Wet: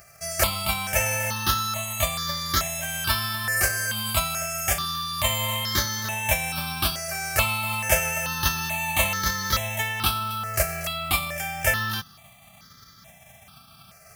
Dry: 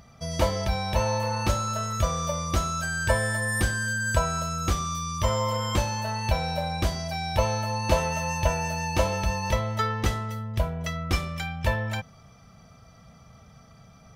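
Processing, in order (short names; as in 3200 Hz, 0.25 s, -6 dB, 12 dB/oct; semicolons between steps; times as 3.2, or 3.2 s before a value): spectral whitening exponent 0.3; notch comb 490 Hz; step phaser 2.3 Hz 960–2600 Hz; gain +5 dB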